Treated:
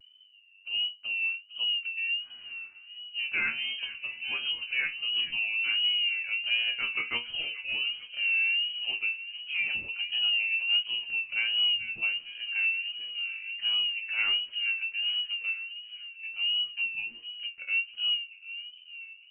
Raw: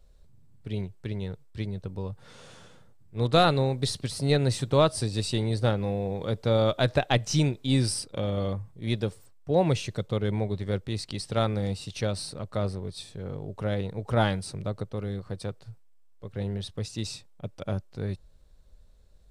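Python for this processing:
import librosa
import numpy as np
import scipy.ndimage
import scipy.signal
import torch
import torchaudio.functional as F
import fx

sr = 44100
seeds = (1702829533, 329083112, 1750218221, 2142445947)

p1 = fx.peak_eq(x, sr, hz=62.0, db=10.5, octaves=1.7)
p2 = 10.0 ** (-25.5 / 20.0) * np.tanh(p1 / 10.0 ** (-25.5 / 20.0))
p3 = p1 + (p2 * 10.0 ** (-7.0 / 20.0))
p4 = fx.freq_invert(p3, sr, carrier_hz=2900)
p5 = fx.resonator_bank(p4, sr, root=39, chord='fifth', decay_s=0.21)
p6 = p5 + fx.echo_wet_highpass(p5, sr, ms=445, feedback_pct=64, hz=1800.0, wet_db=-12.0, dry=0)
p7 = fx.vibrato(p6, sr, rate_hz=1.4, depth_cents=77.0)
y = p7 * 10.0 ** (-2.5 / 20.0)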